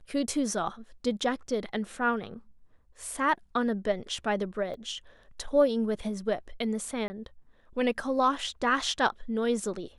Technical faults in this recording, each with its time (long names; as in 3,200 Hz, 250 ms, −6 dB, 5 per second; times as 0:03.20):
0:04.74: drop-out 2.9 ms
0:07.08–0:07.10: drop-out 20 ms